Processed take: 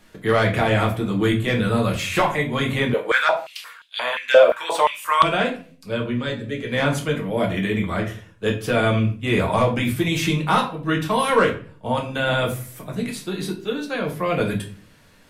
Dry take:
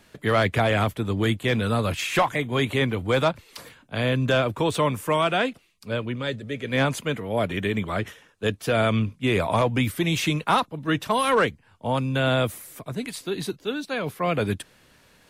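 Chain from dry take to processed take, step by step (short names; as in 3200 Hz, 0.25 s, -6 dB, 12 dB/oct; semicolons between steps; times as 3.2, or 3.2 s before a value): shoebox room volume 33 m³, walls mixed, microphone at 0.57 m; 2.94–5.23 stepped high-pass 5.7 Hz 550–3600 Hz; gain -1 dB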